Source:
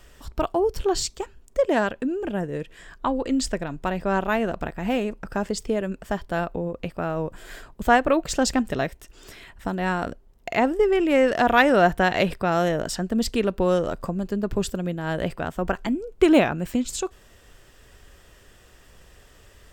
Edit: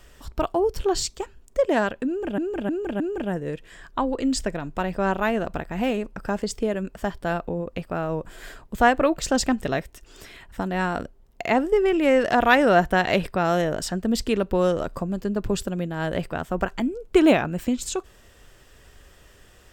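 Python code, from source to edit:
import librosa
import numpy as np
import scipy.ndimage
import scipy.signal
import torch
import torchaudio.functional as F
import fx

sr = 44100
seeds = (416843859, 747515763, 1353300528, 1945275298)

y = fx.edit(x, sr, fx.repeat(start_s=2.07, length_s=0.31, count=4), tone=tone)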